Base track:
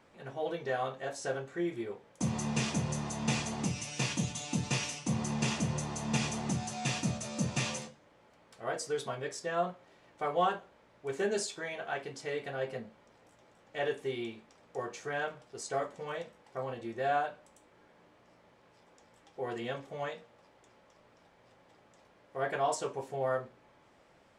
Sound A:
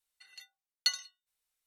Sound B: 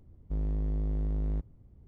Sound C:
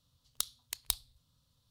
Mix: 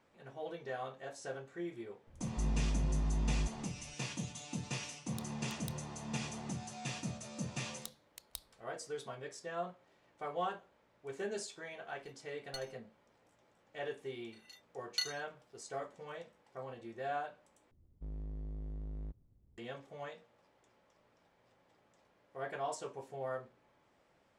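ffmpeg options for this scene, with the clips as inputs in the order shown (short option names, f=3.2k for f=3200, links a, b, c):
-filter_complex "[2:a]asplit=2[a][b];[3:a]asplit=2[c][d];[1:a]asplit=2[e][f];[0:a]volume=-8dB[g];[a]bandreject=f=480:w=7.5[h];[e]aeval=exprs='if(lt(val(0),0),0.447*val(0),val(0))':c=same[i];[f]asplit=2[j][k];[k]adelay=33,volume=-4dB[l];[j][l]amix=inputs=2:normalize=0[m];[g]asplit=2[n][o];[n]atrim=end=17.714[p];[b]atrim=end=1.87,asetpts=PTS-STARTPTS,volume=-12.5dB[q];[o]atrim=start=19.576[r];[h]atrim=end=1.87,asetpts=PTS-STARTPTS,volume=-3dB,afade=t=in:d=0.004:c=hsin,afade=t=out:st=1.866:d=0.004:c=hsin,adelay=2070[s];[c]atrim=end=1.7,asetpts=PTS-STARTPTS,volume=-17dB,afade=t=in:d=0.004:c=hsin,afade=t=out:st=1.696:d=0.004:c=hsin,adelay=4780[t];[d]atrim=end=1.7,asetpts=PTS-STARTPTS,volume=-13.5dB,afade=t=in:d=0.004:c=hsin,afade=t=out:st=1.696:d=0.004:c=hsin,adelay=7450[u];[i]atrim=end=1.66,asetpts=PTS-STARTPTS,volume=-15dB,afade=t=in:d=0.004:c=hsin,afade=t=out:st=1.656:d=0.004:c=hsin,adelay=11680[v];[m]atrim=end=1.66,asetpts=PTS-STARTPTS,volume=-7dB,afade=t=in:d=0.004:c=hsin,afade=t=out:st=1.656:d=0.004:c=hsin,adelay=622692S[w];[p][q]acrossfade=d=0.004:c1=hsin:c2=hsin[x];[x][r]acrossfade=d=0.004:c1=hsin:c2=hsin[y];[y][s][t][u][v][w]amix=inputs=6:normalize=0"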